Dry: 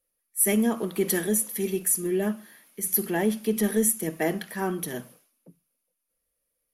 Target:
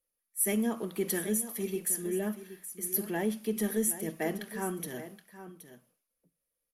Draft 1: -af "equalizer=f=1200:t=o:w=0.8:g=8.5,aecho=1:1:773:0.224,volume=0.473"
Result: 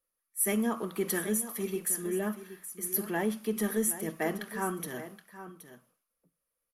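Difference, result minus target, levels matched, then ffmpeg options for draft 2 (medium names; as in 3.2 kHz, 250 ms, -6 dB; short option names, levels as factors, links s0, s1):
1 kHz band +3.5 dB
-af "aecho=1:1:773:0.224,volume=0.473"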